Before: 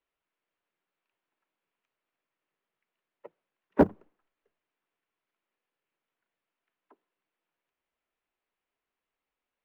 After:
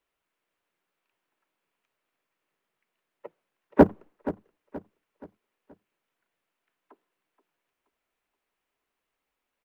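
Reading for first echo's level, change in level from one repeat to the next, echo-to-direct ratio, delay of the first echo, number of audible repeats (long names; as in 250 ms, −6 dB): −15.5 dB, −8.0 dB, −14.5 dB, 476 ms, 3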